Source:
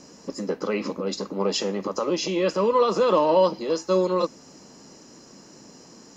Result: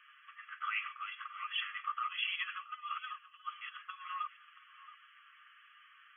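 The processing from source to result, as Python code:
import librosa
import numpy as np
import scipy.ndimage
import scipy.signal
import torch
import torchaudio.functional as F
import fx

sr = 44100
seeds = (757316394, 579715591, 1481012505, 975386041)

y = x + 0.73 * np.pad(x, (int(6.6 * sr / 1000.0), 0))[:len(x)]
y = fx.over_compress(y, sr, threshold_db=-24.0, ratio=-0.5)
y = fx.brickwall_bandpass(y, sr, low_hz=1100.0, high_hz=3400.0)
y = y + 10.0 ** (-18.0 / 20.0) * np.pad(y, (int(676 * sr / 1000.0), 0))[:len(y)]
y = fx.band_squash(y, sr, depth_pct=100, at=(1.0, 1.45))
y = y * 10.0 ** (-4.0 / 20.0)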